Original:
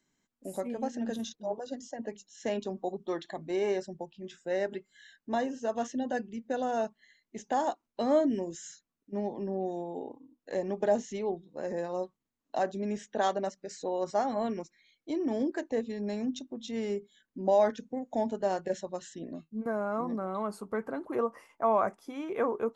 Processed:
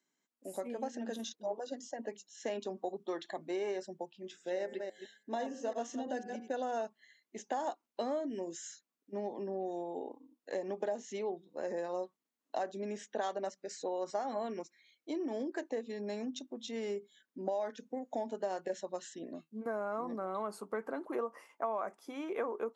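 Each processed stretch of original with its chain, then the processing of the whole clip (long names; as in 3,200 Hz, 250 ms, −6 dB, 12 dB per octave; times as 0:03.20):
0:04.23–0:06.51: delay that plays each chunk backwards 167 ms, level −8 dB + parametric band 1,400 Hz −4 dB 1.2 octaves + hum removal 105.9 Hz, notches 23
whole clip: downward compressor 12 to 1, threshold −30 dBFS; high-pass filter 280 Hz 12 dB per octave; automatic gain control gain up to 4.5 dB; level −5.5 dB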